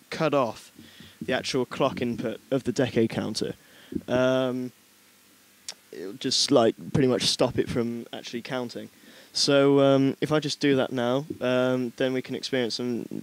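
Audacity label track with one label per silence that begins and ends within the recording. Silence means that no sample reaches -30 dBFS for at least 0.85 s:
4.680000	5.680000	silence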